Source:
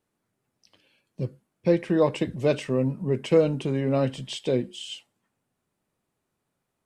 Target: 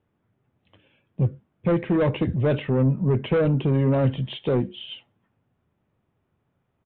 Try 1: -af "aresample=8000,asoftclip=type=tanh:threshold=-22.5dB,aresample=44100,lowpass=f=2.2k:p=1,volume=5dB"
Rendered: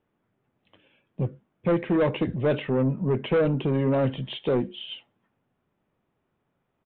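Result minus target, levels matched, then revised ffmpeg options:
125 Hz band -3.5 dB
-af "aresample=8000,asoftclip=type=tanh:threshold=-22.5dB,aresample=44100,lowpass=f=2.2k:p=1,equalizer=f=89:w=0.94:g=10,volume=5dB"

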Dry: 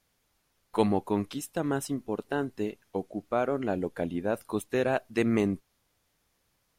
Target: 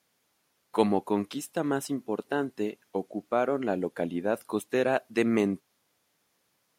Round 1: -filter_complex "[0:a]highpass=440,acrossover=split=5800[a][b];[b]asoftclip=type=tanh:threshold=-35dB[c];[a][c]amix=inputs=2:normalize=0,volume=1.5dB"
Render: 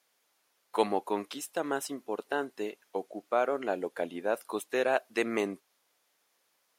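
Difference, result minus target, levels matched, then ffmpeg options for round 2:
125 Hz band -10.0 dB
-filter_complex "[0:a]highpass=170,acrossover=split=5800[a][b];[b]asoftclip=type=tanh:threshold=-35dB[c];[a][c]amix=inputs=2:normalize=0,volume=1.5dB"

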